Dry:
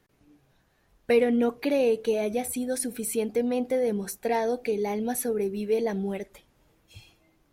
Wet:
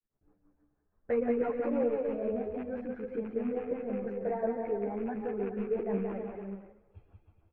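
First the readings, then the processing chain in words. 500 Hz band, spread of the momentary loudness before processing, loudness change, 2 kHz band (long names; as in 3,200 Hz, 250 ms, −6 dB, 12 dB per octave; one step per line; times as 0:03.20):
−6.0 dB, 6 LU, −6.5 dB, −11.0 dB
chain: loose part that buzzes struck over −31 dBFS, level −23 dBFS
harmonic and percussive parts rebalanced percussive +4 dB
low-pass filter 1,400 Hz 24 dB per octave
low-shelf EQ 500 Hz −6 dB
rotating-speaker cabinet horn 6 Hz
low-shelf EQ 62 Hz +10.5 dB
repeating echo 211 ms, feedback 56%, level −24 dB
downward expander −58 dBFS
bouncing-ball delay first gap 180 ms, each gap 0.75×, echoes 5
string-ensemble chorus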